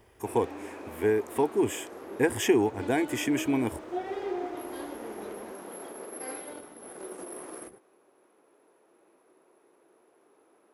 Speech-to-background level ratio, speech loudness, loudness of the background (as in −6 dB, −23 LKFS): 11.5 dB, −28.0 LKFS, −39.5 LKFS